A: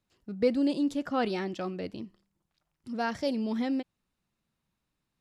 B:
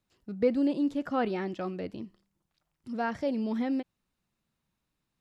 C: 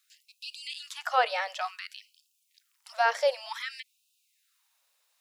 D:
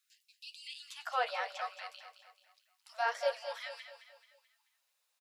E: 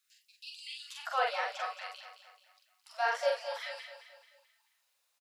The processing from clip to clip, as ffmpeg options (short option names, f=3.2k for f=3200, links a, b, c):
-filter_complex "[0:a]acrossover=split=2700[a][b];[b]acompressor=threshold=-55dB:ratio=4:attack=1:release=60[c];[a][c]amix=inputs=2:normalize=0"
-af "highshelf=f=2.8k:g=11,afftfilt=real='re*gte(b*sr/1024,440*pow(2500/440,0.5+0.5*sin(2*PI*0.55*pts/sr)))':imag='im*gte(b*sr/1024,440*pow(2500/440,0.5+0.5*sin(2*PI*0.55*pts/sr)))':win_size=1024:overlap=0.75,volume=6.5dB"
-filter_complex "[0:a]flanger=delay=7.1:depth=5.5:regen=-42:speed=1.2:shape=sinusoidal,asplit=2[a][b];[b]aecho=0:1:217|434|651|868|1085:0.316|0.139|0.0612|0.0269|0.0119[c];[a][c]amix=inputs=2:normalize=0,volume=-4dB"
-filter_complex "[0:a]asplit=2[a][b];[b]adelay=44,volume=-3dB[c];[a][c]amix=inputs=2:normalize=0,volume=1dB"